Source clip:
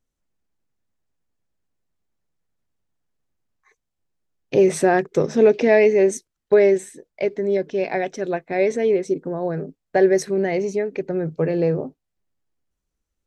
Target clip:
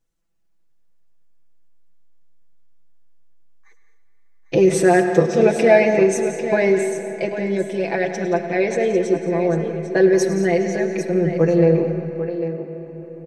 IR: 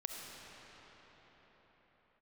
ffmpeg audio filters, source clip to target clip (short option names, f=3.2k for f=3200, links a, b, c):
-filter_complex "[0:a]aecho=1:1:6:0.92,aecho=1:1:104|174|218|798:0.2|0.224|0.188|0.299,asplit=2[a][b];[1:a]atrim=start_sample=2205[c];[b][c]afir=irnorm=-1:irlink=0,volume=-5dB[d];[a][d]amix=inputs=2:normalize=0,volume=-3dB"